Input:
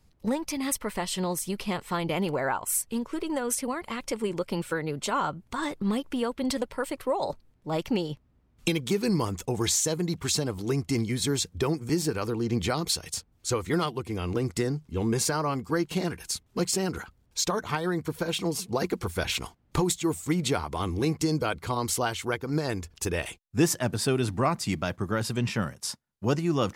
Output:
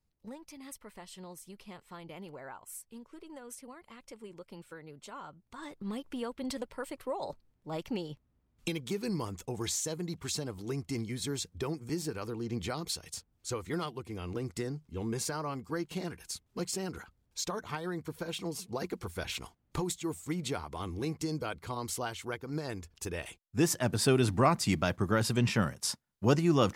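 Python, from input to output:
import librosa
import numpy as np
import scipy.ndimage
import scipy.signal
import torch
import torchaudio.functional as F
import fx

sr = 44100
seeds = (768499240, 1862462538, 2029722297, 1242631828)

y = fx.gain(x, sr, db=fx.line((5.29, -18.0), (6.08, -8.5), (23.22, -8.5), (24.1, 0.0)))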